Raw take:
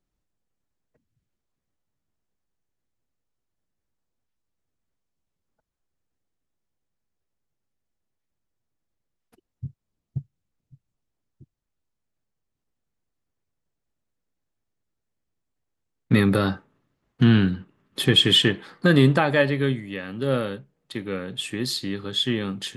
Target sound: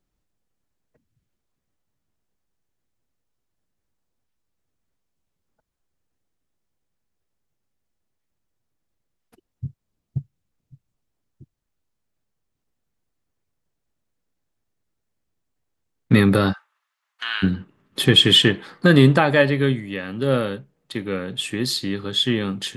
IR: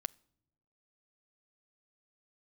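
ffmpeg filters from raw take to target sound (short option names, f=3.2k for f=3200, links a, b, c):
-filter_complex "[0:a]asplit=3[a][b][c];[a]afade=t=out:st=16.52:d=0.02[d];[b]highpass=f=1k:w=0.5412,highpass=f=1k:w=1.3066,afade=t=in:st=16.52:d=0.02,afade=t=out:st=17.42:d=0.02[e];[c]afade=t=in:st=17.42:d=0.02[f];[d][e][f]amix=inputs=3:normalize=0,volume=3.5dB"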